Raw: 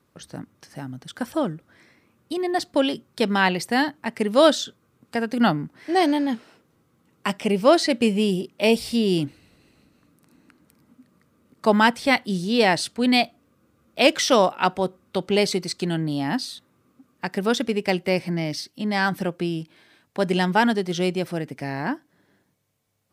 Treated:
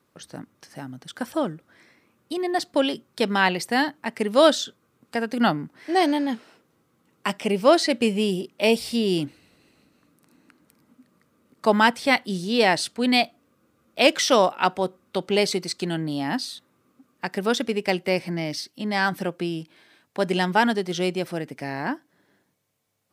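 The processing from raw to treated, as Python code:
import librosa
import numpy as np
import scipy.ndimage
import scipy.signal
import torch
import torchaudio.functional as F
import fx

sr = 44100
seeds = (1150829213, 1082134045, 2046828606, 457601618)

y = fx.low_shelf(x, sr, hz=130.0, db=-9.5)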